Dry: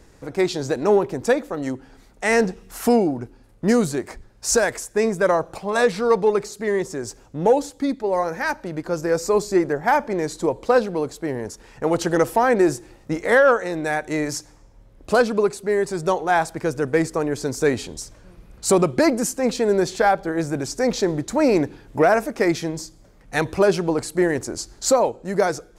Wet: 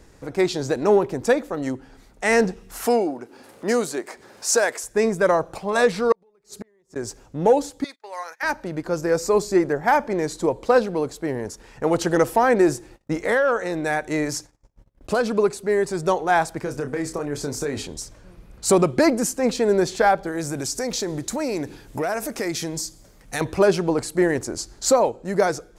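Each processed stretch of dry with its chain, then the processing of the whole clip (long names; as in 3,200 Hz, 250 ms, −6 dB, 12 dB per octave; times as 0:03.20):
0:02.86–0:04.84: high-pass filter 350 Hz + upward compression, threshold −32 dBFS
0:06.12–0:06.96: downward compressor 2 to 1, threshold −27 dBFS + gate with flip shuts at −22 dBFS, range −35 dB
0:07.84–0:08.43: noise gate −30 dBFS, range −26 dB + high-pass filter 1,400 Hz
0:12.74–0:15.37: noise gate −48 dBFS, range −26 dB + downward compressor 5 to 1, threshold −16 dBFS
0:16.63–0:17.82: downward compressor 12 to 1, threshold −22 dBFS + double-tracking delay 28 ms −7 dB
0:20.26–0:23.41: high-shelf EQ 4,000 Hz +11.5 dB + downward compressor 3 to 1, threshold −24 dBFS
whole clip: no processing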